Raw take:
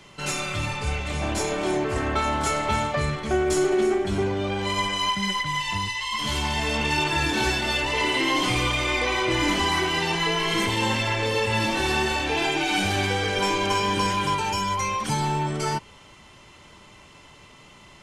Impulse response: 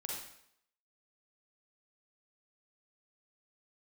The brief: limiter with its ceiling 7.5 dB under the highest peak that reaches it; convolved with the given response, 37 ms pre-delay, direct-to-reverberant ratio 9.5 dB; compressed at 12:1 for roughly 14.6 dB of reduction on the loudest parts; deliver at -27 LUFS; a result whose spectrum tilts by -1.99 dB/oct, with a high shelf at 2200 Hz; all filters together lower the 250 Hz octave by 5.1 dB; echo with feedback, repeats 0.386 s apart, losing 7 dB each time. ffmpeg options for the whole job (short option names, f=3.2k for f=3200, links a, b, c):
-filter_complex "[0:a]equalizer=f=250:t=o:g=-8.5,highshelf=f=2.2k:g=8.5,acompressor=threshold=-32dB:ratio=12,alimiter=level_in=5.5dB:limit=-24dB:level=0:latency=1,volume=-5.5dB,aecho=1:1:386|772|1158|1544|1930:0.447|0.201|0.0905|0.0407|0.0183,asplit=2[a][b];[1:a]atrim=start_sample=2205,adelay=37[c];[b][c]afir=irnorm=-1:irlink=0,volume=-9.5dB[d];[a][d]amix=inputs=2:normalize=0,volume=9dB"